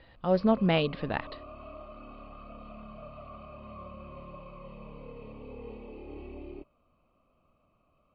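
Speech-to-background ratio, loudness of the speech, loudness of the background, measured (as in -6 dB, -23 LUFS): 19.0 dB, -27.5 LUFS, -46.5 LUFS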